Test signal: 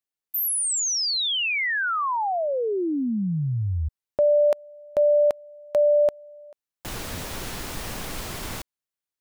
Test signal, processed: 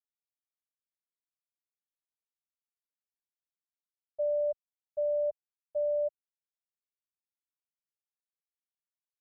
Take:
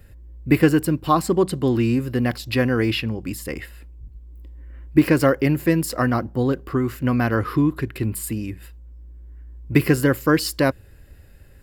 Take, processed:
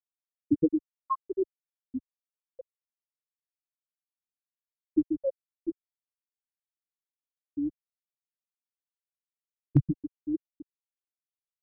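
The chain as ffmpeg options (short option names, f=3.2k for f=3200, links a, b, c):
-af "afftfilt=real='re*gte(hypot(re,im),1.58)':imag='im*gte(hypot(re,im),1.58)':win_size=1024:overlap=0.75,asubboost=boost=9.5:cutoff=110,volume=-5dB"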